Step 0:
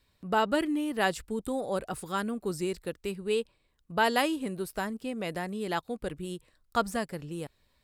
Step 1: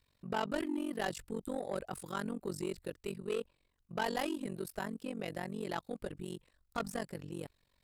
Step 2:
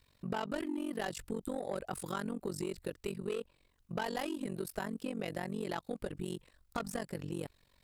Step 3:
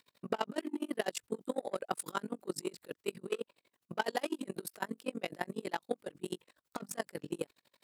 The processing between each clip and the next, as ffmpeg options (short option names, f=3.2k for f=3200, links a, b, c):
-af "tremolo=f=46:d=0.974,asoftclip=type=tanh:threshold=-26.5dB,volume=-1dB"
-af "acompressor=threshold=-40dB:ratio=6,volume=6dB"
-af "highpass=260,aeval=exprs='val(0)*pow(10,-29*(0.5-0.5*cos(2*PI*12*n/s))/20)':c=same,volume=8dB"